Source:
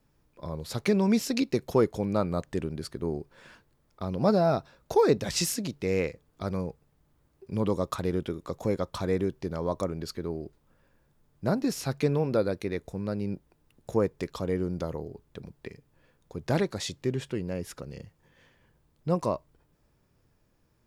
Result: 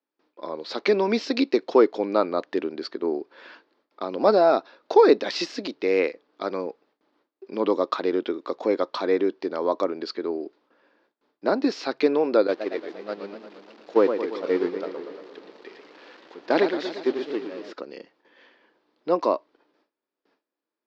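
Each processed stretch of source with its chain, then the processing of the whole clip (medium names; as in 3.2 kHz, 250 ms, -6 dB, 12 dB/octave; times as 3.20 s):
12.47–17.73 s: jump at every zero crossing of -35.5 dBFS + gate -28 dBFS, range -12 dB + modulated delay 116 ms, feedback 63%, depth 192 cents, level -8 dB
whole clip: gate with hold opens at -57 dBFS; de-esser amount 60%; elliptic band-pass 290–4600 Hz, stop band 40 dB; trim +7.5 dB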